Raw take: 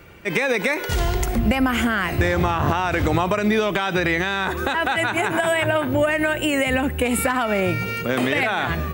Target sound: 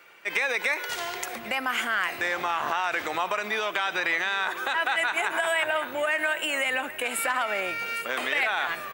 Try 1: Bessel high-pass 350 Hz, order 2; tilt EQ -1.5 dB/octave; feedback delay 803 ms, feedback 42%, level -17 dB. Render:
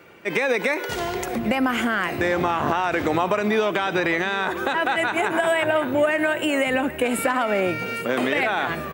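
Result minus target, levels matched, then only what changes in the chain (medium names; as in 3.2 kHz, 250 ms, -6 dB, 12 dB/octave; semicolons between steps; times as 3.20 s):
250 Hz band +12.5 dB
change: Bessel high-pass 1.2 kHz, order 2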